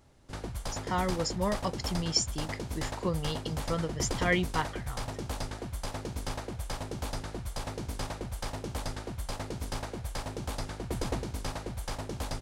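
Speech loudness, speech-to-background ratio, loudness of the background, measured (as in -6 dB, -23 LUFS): -32.5 LUFS, 5.0 dB, -37.5 LUFS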